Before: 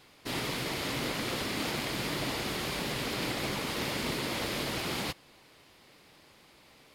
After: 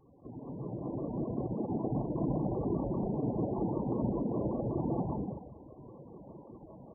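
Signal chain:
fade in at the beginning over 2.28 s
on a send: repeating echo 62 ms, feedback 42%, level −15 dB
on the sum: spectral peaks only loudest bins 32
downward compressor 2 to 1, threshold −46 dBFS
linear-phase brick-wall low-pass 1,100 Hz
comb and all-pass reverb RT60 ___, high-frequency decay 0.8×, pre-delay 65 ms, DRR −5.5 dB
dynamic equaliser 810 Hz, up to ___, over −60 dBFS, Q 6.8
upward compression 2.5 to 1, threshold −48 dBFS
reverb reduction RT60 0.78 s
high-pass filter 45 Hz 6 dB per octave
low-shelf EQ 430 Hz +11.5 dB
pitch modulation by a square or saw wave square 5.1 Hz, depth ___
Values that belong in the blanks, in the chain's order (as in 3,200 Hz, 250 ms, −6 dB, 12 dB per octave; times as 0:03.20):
1.3 s, +5 dB, 100 cents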